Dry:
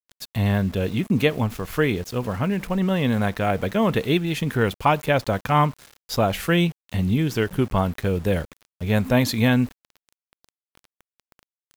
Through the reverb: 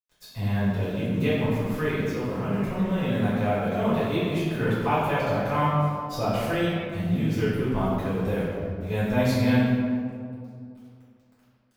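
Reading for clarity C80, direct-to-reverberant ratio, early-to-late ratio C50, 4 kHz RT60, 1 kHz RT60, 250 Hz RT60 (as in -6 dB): 0.0 dB, -11.0 dB, -2.5 dB, 1.1 s, 2.2 s, 2.7 s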